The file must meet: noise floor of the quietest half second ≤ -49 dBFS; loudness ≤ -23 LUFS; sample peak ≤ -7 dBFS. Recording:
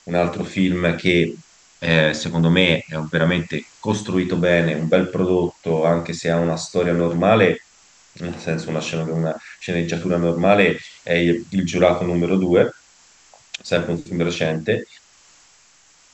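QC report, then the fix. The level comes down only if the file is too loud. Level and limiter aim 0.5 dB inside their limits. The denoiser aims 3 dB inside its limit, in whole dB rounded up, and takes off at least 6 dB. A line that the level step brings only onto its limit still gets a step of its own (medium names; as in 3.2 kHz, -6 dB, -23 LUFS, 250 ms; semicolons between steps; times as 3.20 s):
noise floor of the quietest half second -53 dBFS: pass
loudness -19.5 LUFS: fail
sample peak -2.0 dBFS: fail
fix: trim -4 dB; peak limiter -7.5 dBFS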